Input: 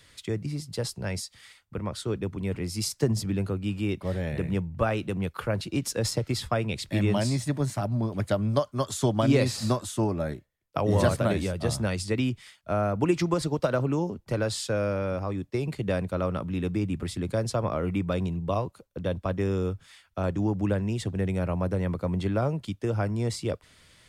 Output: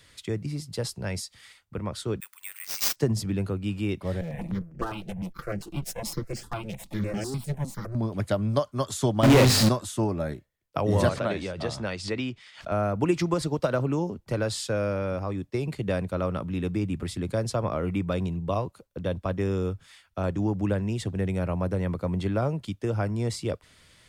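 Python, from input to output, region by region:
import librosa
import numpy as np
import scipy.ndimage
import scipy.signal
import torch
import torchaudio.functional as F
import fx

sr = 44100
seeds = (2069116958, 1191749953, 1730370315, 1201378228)

y = fx.chain(x, sr, fx.highpass(hz=1400.0, slope=24),
    fx.resample_bad(factor=4, down='none', up='zero_stuff'), at=(2.2, 2.96))
y = fx.chain(y, sr, fx.lower_of_two(delay_ms=5.9),
    fx.peak_eq(hz=3100.0, db=-4.5, octaves=2.2),
    fx.phaser_held(hz=9.9, low_hz=290.0, high_hz=3800.0), at=(4.21, 7.95))
y = fx.chain(y, sr, fx.high_shelf(hz=6100.0, db=-10.0),
    fx.hum_notches(base_hz=50, count=9),
    fx.power_curve(exponent=0.35), at=(9.23, 9.69))
y = fx.chain(y, sr, fx.lowpass(hz=5300.0, slope=12),
    fx.low_shelf(hz=220.0, db=-10.5),
    fx.pre_swell(db_per_s=130.0), at=(11.09, 12.72))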